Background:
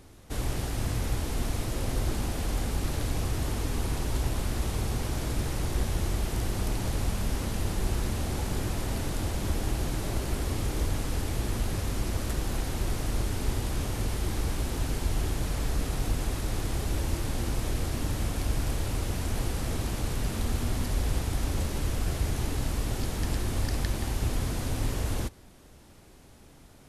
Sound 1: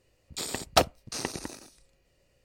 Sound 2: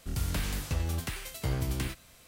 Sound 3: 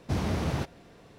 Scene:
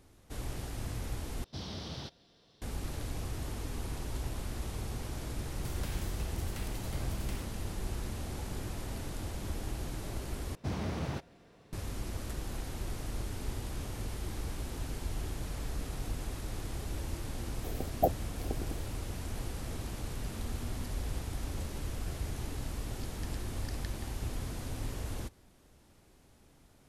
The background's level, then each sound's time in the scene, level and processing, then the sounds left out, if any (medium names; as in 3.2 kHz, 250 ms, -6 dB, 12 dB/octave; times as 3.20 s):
background -8.5 dB
1.44 s: replace with 3 -13.5 dB + high-order bell 4.2 kHz +13.5 dB 1.1 oct
5.49 s: add 2 -10 dB
10.55 s: replace with 3 -6.5 dB
17.26 s: add 1 -3.5 dB + brick-wall FIR band-stop 820–12000 Hz